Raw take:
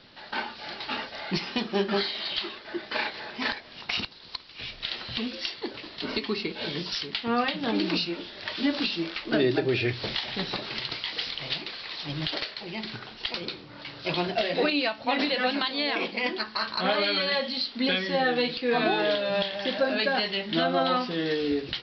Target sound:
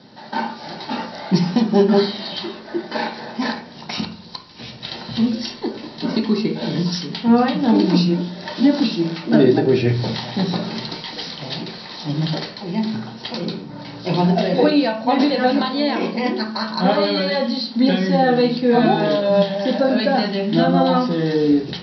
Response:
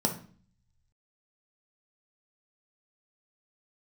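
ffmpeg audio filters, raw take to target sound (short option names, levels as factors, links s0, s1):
-filter_complex "[1:a]atrim=start_sample=2205[s0];[0:a][s0]afir=irnorm=-1:irlink=0,volume=0.708"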